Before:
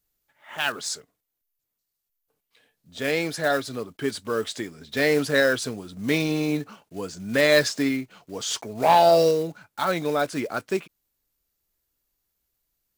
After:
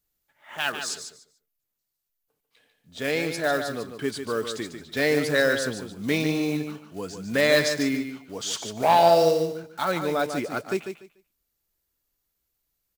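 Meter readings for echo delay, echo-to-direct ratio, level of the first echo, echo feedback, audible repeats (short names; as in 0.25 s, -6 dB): 0.146 s, -8.0 dB, -8.0 dB, 20%, 2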